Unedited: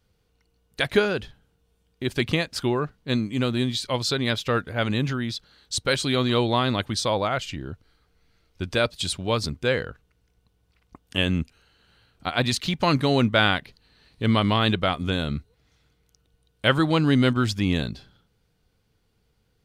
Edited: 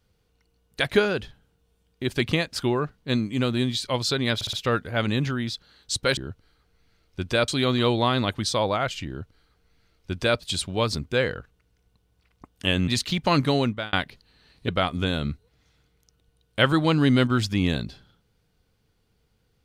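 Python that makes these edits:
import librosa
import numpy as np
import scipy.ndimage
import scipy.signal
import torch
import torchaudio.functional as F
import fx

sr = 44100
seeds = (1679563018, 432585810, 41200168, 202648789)

y = fx.edit(x, sr, fx.stutter(start_s=4.35, slice_s=0.06, count=4),
    fx.duplicate(start_s=7.59, length_s=1.31, to_s=5.99),
    fx.cut(start_s=11.39, length_s=1.05),
    fx.fade_out_span(start_s=13.06, length_s=0.43),
    fx.cut(start_s=14.24, length_s=0.5), tone=tone)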